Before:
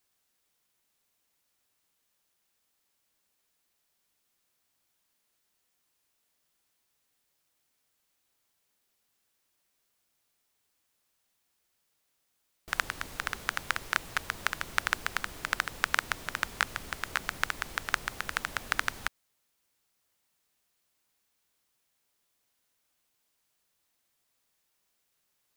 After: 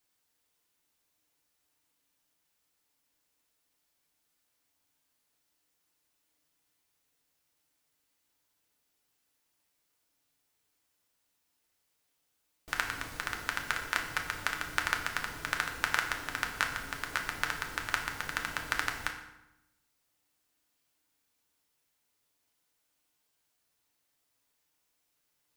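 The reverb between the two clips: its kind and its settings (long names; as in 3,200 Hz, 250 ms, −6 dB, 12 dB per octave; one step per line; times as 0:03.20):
feedback delay network reverb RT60 0.92 s, low-frequency decay 1.3×, high-frequency decay 0.75×, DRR 2 dB
level −3 dB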